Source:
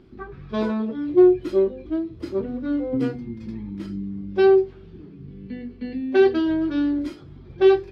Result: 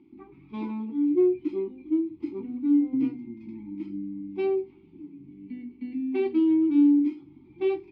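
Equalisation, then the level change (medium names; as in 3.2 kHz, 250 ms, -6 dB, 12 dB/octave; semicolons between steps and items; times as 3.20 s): vowel filter u; peaking EQ 630 Hz -8 dB 1.8 oct; +8.0 dB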